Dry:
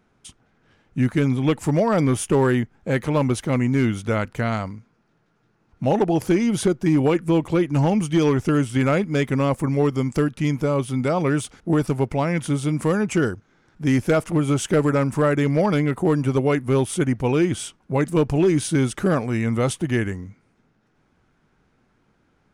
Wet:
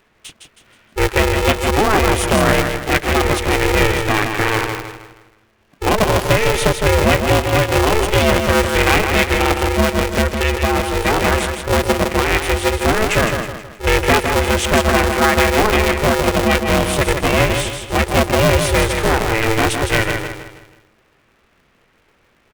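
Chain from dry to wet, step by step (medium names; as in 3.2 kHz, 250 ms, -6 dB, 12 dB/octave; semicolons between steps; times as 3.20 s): peaking EQ 2.4 kHz +11 dB 1.3 oct; on a send: feedback delay 159 ms, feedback 40%, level -6 dB; on the sum: polarity switched at an audio rate 220 Hz; trim +3 dB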